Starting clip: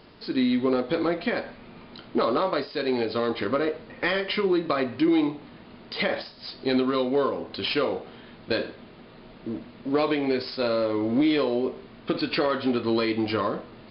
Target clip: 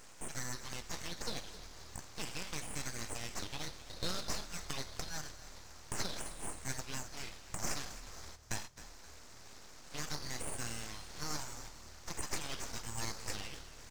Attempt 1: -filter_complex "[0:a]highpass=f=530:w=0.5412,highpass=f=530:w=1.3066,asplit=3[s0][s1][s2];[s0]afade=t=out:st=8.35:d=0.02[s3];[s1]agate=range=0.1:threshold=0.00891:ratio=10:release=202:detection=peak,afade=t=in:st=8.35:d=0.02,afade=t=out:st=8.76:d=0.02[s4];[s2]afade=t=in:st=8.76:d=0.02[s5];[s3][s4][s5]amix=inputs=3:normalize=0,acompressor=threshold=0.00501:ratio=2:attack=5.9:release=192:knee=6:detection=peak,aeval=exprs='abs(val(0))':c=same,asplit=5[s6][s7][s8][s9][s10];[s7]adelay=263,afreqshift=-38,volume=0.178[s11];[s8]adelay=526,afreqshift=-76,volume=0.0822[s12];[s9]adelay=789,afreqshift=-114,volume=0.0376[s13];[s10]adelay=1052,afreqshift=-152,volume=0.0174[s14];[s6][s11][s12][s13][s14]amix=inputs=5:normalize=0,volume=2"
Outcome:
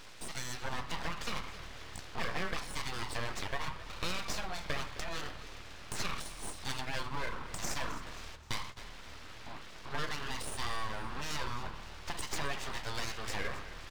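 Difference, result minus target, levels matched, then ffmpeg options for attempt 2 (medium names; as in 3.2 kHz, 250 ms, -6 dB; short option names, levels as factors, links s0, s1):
2 kHz band +4.0 dB
-filter_complex "[0:a]highpass=f=1800:w=0.5412,highpass=f=1800:w=1.3066,asplit=3[s0][s1][s2];[s0]afade=t=out:st=8.35:d=0.02[s3];[s1]agate=range=0.1:threshold=0.00891:ratio=10:release=202:detection=peak,afade=t=in:st=8.35:d=0.02,afade=t=out:st=8.76:d=0.02[s4];[s2]afade=t=in:st=8.76:d=0.02[s5];[s3][s4][s5]amix=inputs=3:normalize=0,acompressor=threshold=0.00501:ratio=2:attack=5.9:release=192:knee=6:detection=peak,aeval=exprs='abs(val(0))':c=same,asplit=5[s6][s7][s8][s9][s10];[s7]adelay=263,afreqshift=-38,volume=0.178[s11];[s8]adelay=526,afreqshift=-76,volume=0.0822[s12];[s9]adelay=789,afreqshift=-114,volume=0.0376[s13];[s10]adelay=1052,afreqshift=-152,volume=0.0174[s14];[s6][s11][s12][s13][s14]amix=inputs=5:normalize=0,volume=2"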